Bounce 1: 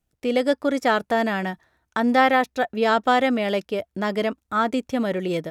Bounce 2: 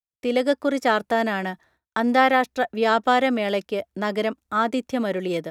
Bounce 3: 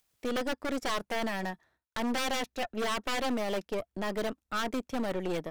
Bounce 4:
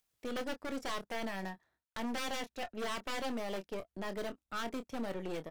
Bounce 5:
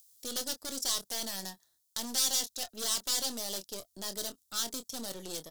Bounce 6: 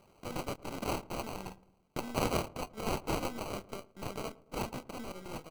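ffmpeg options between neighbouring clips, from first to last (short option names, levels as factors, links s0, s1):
-filter_complex "[0:a]acrossover=split=160[s0][s1];[s0]acompressor=threshold=0.00355:ratio=6[s2];[s2][s1]amix=inputs=2:normalize=0,agate=range=0.0224:threshold=0.00251:ratio=3:detection=peak"
-af "aeval=exprs='0.119*(abs(mod(val(0)/0.119+3,4)-2)-1)':c=same,aeval=exprs='0.126*(cos(1*acos(clip(val(0)/0.126,-1,1)))-cos(1*PI/2))+0.0224*(cos(4*acos(clip(val(0)/0.126,-1,1)))-cos(4*PI/2))':c=same,acompressor=mode=upward:threshold=0.00562:ratio=2.5,volume=0.422"
-filter_complex "[0:a]asplit=2[s0][s1];[s1]adelay=26,volume=0.299[s2];[s0][s2]amix=inputs=2:normalize=0,volume=0.447"
-af "aexciter=amount=11.1:drive=6.5:freq=3600,volume=0.596"
-filter_complex "[0:a]acrusher=samples=25:mix=1:aa=0.000001,asplit=2[s0][s1];[s1]adelay=111,lowpass=f=1000:p=1,volume=0.106,asplit=2[s2][s3];[s3]adelay=111,lowpass=f=1000:p=1,volume=0.54,asplit=2[s4][s5];[s5]adelay=111,lowpass=f=1000:p=1,volume=0.54,asplit=2[s6][s7];[s7]adelay=111,lowpass=f=1000:p=1,volume=0.54[s8];[s0][s2][s4][s6][s8]amix=inputs=5:normalize=0,volume=0.794"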